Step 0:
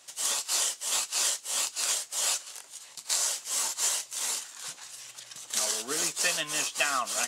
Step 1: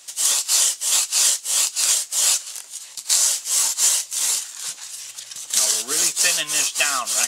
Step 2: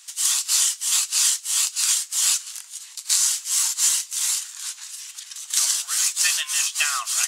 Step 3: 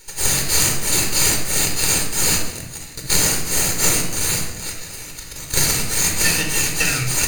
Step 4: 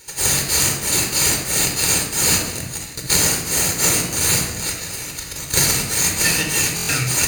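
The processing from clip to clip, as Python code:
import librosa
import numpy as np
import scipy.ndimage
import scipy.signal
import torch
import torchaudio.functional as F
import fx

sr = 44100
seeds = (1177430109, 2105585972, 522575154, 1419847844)

y1 = fx.high_shelf(x, sr, hz=2400.0, db=9.5)
y1 = F.gain(torch.from_numpy(y1), 2.0).numpy()
y2 = scipy.signal.sosfilt(scipy.signal.butter(4, 1000.0, 'highpass', fs=sr, output='sos'), y1)
y2 = F.gain(torch.from_numpy(y2), -2.0).numpy()
y3 = fx.lower_of_two(y2, sr, delay_ms=0.46)
y3 = fx.low_shelf(y3, sr, hz=470.0, db=2.5)
y3 = fx.room_shoebox(y3, sr, seeds[0], volume_m3=3300.0, walls='furnished', distance_m=4.4)
y3 = F.gain(torch.from_numpy(y3), 1.5).numpy()
y4 = scipy.signal.sosfilt(scipy.signal.butter(2, 51.0, 'highpass', fs=sr, output='sos'), y3)
y4 = fx.rider(y4, sr, range_db=4, speed_s=0.5)
y4 = fx.buffer_glitch(y4, sr, at_s=(6.75,), block=1024, repeats=5)
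y4 = F.gain(torch.from_numpy(y4), 1.0).numpy()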